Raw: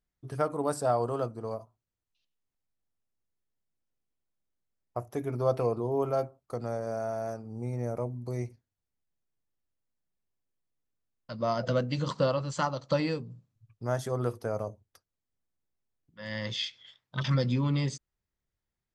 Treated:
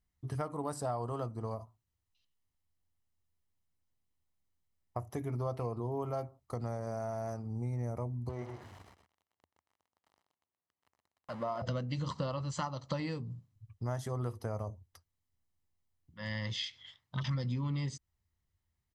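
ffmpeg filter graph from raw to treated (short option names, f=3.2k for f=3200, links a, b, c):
-filter_complex "[0:a]asettb=1/sr,asplit=3[a][b][c];[a]atrim=end=8.294[d];[b]atrim=start=8.29:end=11.62,asetpts=PTS-STARTPTS,afade=t=in:d=0.004:c=qsin,afade=t=out:st=3.326:d=0.004:c=qsin,aeval=exprs='val(0)+0.5*0.0133*sgn(val(0))':c=same,bandpass=f=780:t=q:w=0.7,aecho=1:1:125:0.355,atrim=end_sample=146853[e];[c]atrim=start=11.616[f];[d][e]acrossfade=d=0.004:c1=hsin:c2=qsin[g];[g][f]acrossfade=d=0.004:c1=qsin:c2=hsin,equalizer=f=82:t=o:w=0.53:g=12,aecho=1:1:1:0.33,acompressor=threshold=-35dB:ratio=3"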